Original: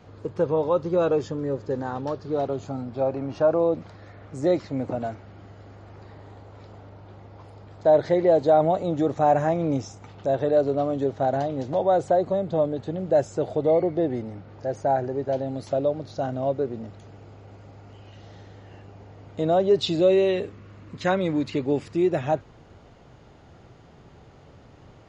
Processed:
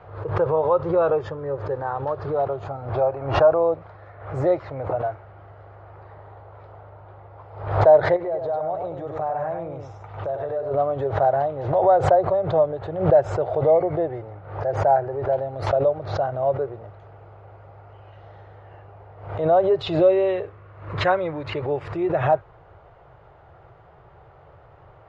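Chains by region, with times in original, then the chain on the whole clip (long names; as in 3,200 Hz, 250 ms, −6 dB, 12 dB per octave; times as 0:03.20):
0:08.16–0:10.71: downward compressor, threshold −27 dBFS + single-tap delay 99 ms −5.5 dB
whole clip: drawn EQ curve 110 Hz 0 dB, 160 Hz −4 dB, 230 Hz −22 dB, 350 Hz −3 dB, 640 Hz +5 dB, 1,300 Hz +5 dB, 3,700 Hz −10 dB, 6,400 Hz −22 dB; background raised ahead of every attack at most 87 dB per second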